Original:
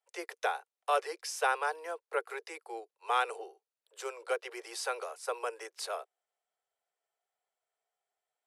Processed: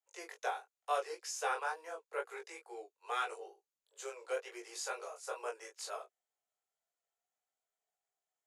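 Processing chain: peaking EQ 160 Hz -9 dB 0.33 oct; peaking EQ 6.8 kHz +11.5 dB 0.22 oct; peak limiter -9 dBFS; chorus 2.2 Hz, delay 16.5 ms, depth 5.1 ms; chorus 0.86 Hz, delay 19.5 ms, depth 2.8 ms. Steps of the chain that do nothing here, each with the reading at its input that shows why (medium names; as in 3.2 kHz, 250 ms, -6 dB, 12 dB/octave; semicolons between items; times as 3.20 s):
peaking EQ 160 Hz: input has nothing below 320 Hz; peak limiter -9 dBFS: peak at its input -17.0 dBFS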